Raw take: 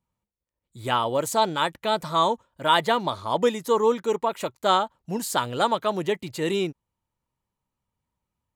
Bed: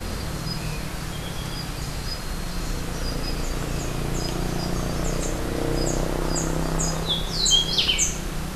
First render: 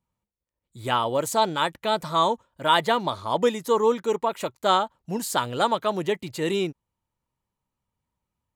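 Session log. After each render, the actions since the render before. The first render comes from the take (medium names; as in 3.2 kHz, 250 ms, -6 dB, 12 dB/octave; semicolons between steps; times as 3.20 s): no audible change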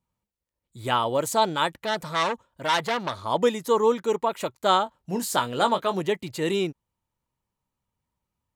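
1.75–3.24 s: transformer saturation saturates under 3.2 kHz; 4.84–6.01 s: doubling 21 ms -9 dB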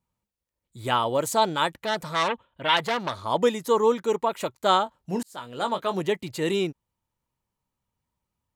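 2.28–2.77 s: resonant high shelf 4.3 kHz -11 dB, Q 3; 5.23–6.01 s: fade in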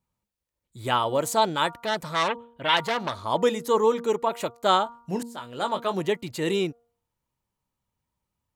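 de-hum 235.3 Hz, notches 6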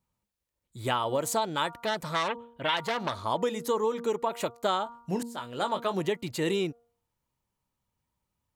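compression, threshold -24 dBFS, peak gain reduction 9 dB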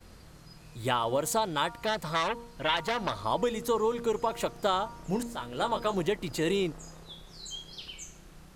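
add bed -22.5 dB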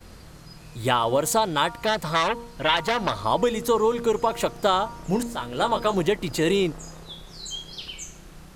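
trim +6.5 dB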